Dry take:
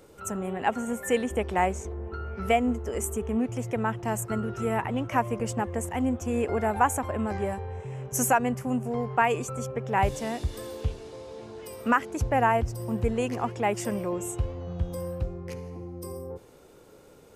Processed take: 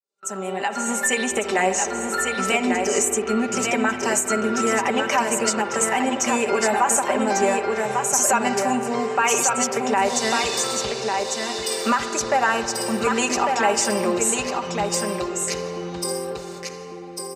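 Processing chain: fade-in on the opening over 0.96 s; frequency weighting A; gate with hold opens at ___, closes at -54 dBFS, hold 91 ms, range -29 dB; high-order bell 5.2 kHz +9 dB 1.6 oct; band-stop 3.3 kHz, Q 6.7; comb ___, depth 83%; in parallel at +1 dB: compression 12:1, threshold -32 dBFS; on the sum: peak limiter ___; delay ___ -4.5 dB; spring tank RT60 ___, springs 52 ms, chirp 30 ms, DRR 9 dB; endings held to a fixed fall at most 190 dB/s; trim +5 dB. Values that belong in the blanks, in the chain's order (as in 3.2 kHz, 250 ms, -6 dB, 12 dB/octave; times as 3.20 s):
-45 dBFS, 5.1 ms, -15 dBFS, 1148 ms, 3.5 s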